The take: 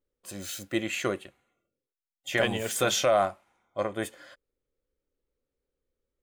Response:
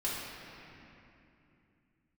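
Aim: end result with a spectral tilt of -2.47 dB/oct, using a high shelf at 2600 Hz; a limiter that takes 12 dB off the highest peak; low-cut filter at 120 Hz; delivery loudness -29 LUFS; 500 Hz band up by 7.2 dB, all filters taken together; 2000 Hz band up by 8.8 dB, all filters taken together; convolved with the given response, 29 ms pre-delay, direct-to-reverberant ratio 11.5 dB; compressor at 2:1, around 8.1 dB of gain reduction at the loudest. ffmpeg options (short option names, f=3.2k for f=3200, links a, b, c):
-filter_complex "[0:a]highpass=120,equalizer=f=500:t=o:g=8,equalizer=f=2k:t=o:g=8,highshelf=f=2.6k:g=5.5,acompressor=threshold=-27dB:ratio=2,alimiter=limit=-22dB:level=0:latency=1,asplit=2[a][b];[1:a]atrim=start_sample=2205,adelay=29[c];[b][c]afir=irnorm=-1:irlink=0,volume=-17.5dB[d];[a][d]amix=inputs=2:normalize=0,volume=4dB"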